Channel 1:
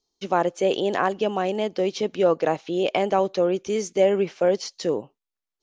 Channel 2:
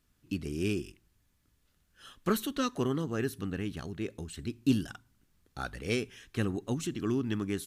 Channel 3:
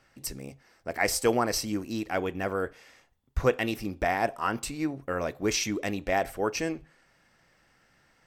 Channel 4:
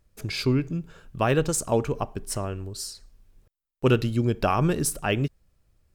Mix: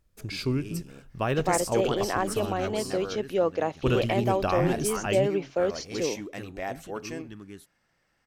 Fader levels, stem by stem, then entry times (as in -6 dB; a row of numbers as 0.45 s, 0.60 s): -5.0 dB, -11.0 dB, -7.5 dB, -4.5 dB; 1.15 s, 0.00 s, 0.50 s, 0.00 s